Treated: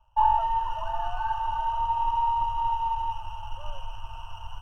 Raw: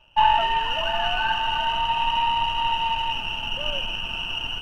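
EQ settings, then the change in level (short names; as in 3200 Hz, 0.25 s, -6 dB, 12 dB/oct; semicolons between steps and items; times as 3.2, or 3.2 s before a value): EQ curve 100 Hz 0 dB, 190 Hz -28 dB, 320 Hz -27 dB, 1000 Hz 0 dB, 2200 Hz -27 dB, 6400 Hz -10 dB; 0.0 dB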